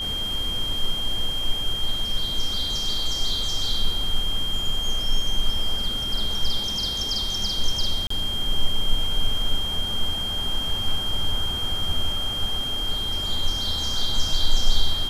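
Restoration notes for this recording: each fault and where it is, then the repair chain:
whine 3.2 kHz -26 dBFS
8.07–8.10 s: dropout 34 ms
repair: band-stop 3.2 kHz, Q 30; interpolate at 8.07 s, 34 ms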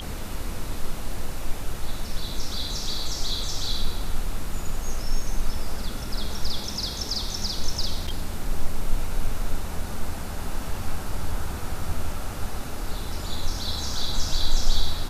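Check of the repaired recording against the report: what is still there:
nothing left

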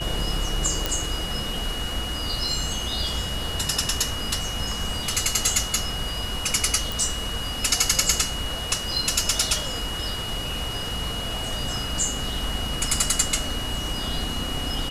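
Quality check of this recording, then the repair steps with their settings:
whine 2.9 kHz -31 dBFS
0.86 s: pop
6.92 s: pop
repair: de-click; band-stop 2.9 kHz, Q 30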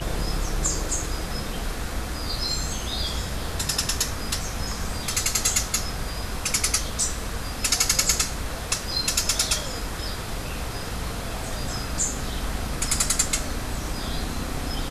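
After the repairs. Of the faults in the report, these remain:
nothing left

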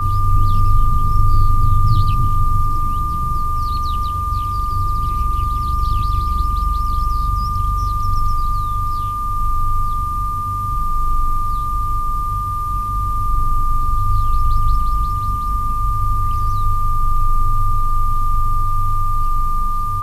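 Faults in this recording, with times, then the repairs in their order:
whine 1.2 kHz -20 dBFS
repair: band-stop 1.2 kHz, Q 30

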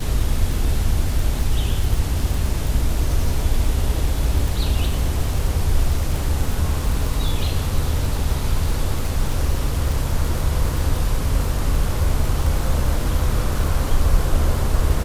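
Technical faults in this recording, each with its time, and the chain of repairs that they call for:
crackle 52 per s -24 dBFS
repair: de-click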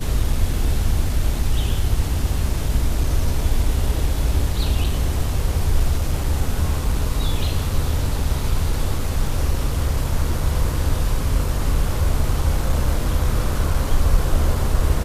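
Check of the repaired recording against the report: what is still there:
nothing left

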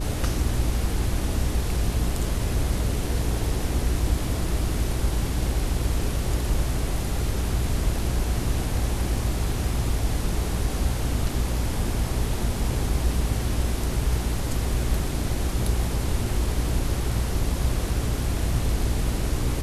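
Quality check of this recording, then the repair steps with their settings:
hum 60 Hz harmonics 7 -28 dBFS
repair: de-hum 60 Hz, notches 7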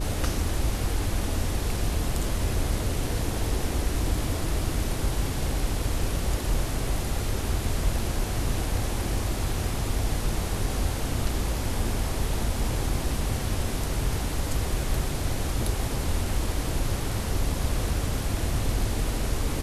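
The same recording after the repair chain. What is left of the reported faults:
nothing left

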